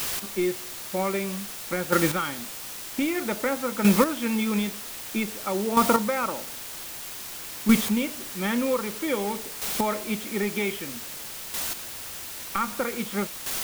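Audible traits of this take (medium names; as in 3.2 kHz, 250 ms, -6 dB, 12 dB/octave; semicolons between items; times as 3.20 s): a quantiser's noise floor 6-bit, dither triangular; chopped level 0.52 Hz, depth 60%, duty 10%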